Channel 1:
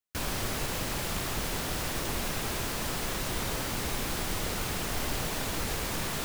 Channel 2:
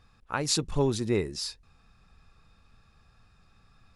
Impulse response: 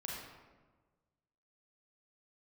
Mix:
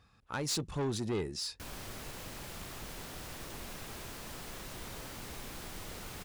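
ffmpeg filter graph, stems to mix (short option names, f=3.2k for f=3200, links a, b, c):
-filter_complex "[0:a]adelay=1450,volume=-12dB[a];[1:a]highpass=53,volume=-2.5dB[b];[a][b]amix=inputs=2:normalize=0,asoftclip=type=tanh:threshold=-29dB"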